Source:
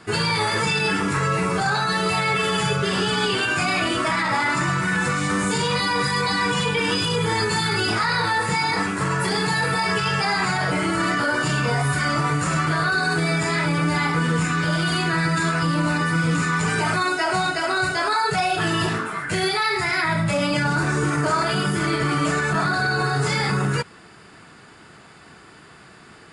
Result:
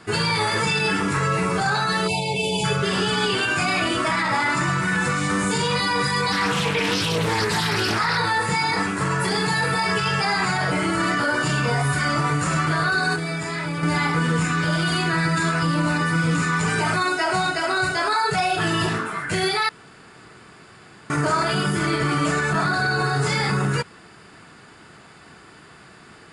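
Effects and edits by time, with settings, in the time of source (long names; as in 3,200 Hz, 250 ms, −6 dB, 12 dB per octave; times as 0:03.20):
0:02.07–0:02.64: time-frequency box erased 1,000–2,200 Hz
0:06.32–0:08.18: highs frequency-modulated by the lows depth 0.35 ms
0:13.16–0:13.83: clip gain −5.5 dB
0:19.69–0:21.10: fill with room tone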